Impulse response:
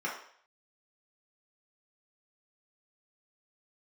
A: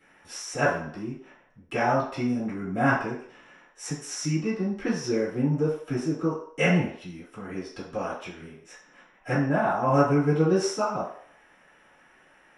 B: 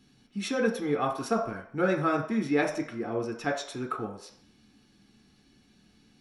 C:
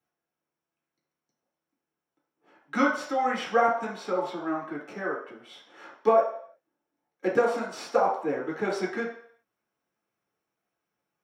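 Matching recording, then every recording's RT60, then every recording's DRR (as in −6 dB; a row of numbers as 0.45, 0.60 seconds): C; 0.60, 0.60, 0.60 seconds; −11.5, 1.0, −5.0 decibels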